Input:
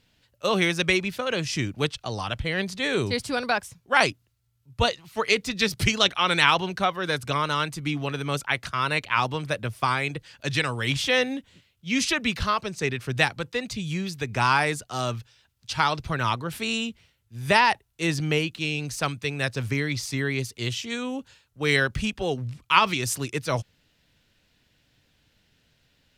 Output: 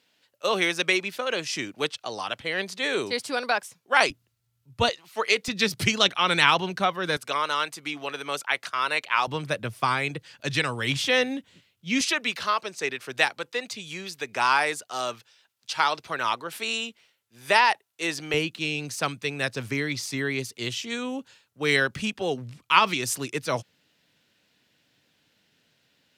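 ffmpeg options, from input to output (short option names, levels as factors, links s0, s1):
-af "asetnsamples=n=441:p=0,asendcmd='4.1 highpass f 110;4.89 highpass f 360;5.48 highpass f 130;7.17 highpass f 450;9.27 highpass f 130;12.01 highpass f 400;18.34 highpass f 180',highpass=330"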